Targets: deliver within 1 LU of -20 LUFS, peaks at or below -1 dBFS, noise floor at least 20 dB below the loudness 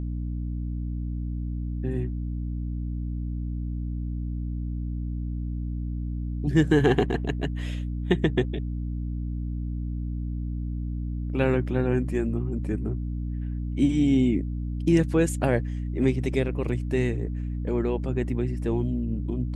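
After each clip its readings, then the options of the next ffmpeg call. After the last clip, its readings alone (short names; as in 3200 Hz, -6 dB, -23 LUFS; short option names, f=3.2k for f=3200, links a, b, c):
hum 60 Hz; harmonics up to 300 Hz; hum level -27 dBFS; loudness -27.5 LUFS; peak -8.0 dBFS; loudness target -20.0 LUFS
-> -af "bandreject=f=60:t=h:w=6,bandreject=f=120:t=h:w=6,bandreject=f=180:t=h:w=6,bandreject=f=240:t=h:w=6,bandreject=f=300:t=h:w=6"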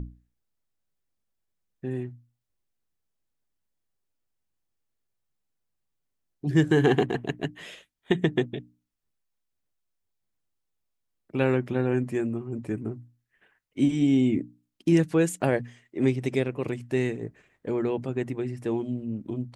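hum none; loudness -27.0 LUFS; peak -8.5 dBFS; loudness target -20.0 LUFS
-> -af "volume=7dB"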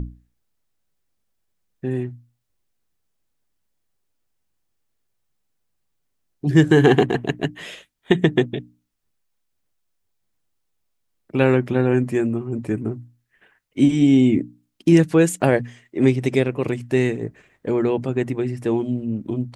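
loudness -20.0 LUFS; peak -1.5 dBFS; noise floor -73 dBFS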